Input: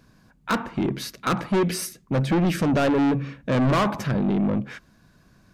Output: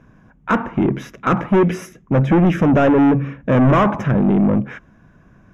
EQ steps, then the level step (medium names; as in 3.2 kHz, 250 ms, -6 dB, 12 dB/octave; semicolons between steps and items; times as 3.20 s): boxcar filter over 10 samples; +7.5 dB